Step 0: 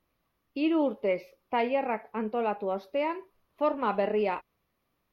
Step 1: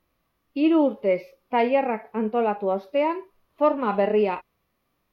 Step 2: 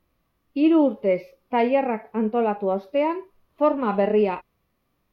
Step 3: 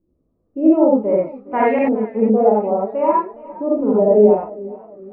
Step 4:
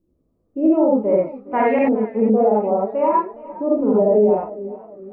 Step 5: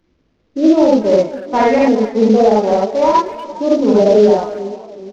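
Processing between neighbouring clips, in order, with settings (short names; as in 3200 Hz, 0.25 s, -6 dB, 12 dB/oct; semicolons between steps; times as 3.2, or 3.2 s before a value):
harmonic-percussive split harmonic +9 dB; gain -2 dB
low shelf 340 Hz +5.5 dB; gain -1 dB
LFO low-pass saw up 0.56 Hz 350–1800 Hz; non-linear reverb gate 0.11 s rising, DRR -4.5 dB; warbling echo 0.411 s, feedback 42%, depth 93 cents, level -19.5 dB; gain -2 dB
limiter -7.5 dBFS, peak gain reduction 6 dB
CVSD 32 kbps; speakerphone echo 0.24 s, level -15 dB; gain +5.5 dB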